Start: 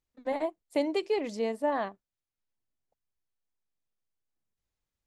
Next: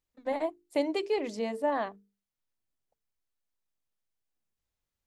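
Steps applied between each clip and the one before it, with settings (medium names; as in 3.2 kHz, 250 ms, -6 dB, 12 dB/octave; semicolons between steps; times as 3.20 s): hum notches 50/100/150/200/250/300/350/400/450 Hz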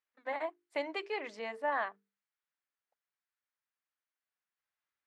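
band-pass filter 1.6 kHz, Q 1.5; trim +4.5 dB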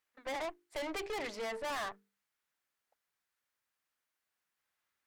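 valve stage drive 46 dB, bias 0.65; trim +10 dB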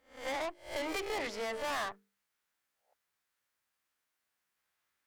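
reverse spectral sustain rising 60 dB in 0.40 s; trim +1 dB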